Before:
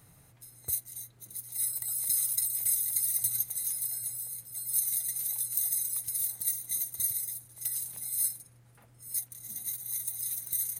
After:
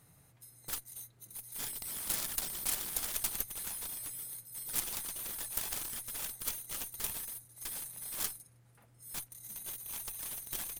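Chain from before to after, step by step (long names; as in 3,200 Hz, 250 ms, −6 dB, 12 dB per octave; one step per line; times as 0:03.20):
harmonic generator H 6 −18 dB, 7 −11 dB, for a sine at −13 dBFS
mains-hum notches 50/100 Hz
level −4 dB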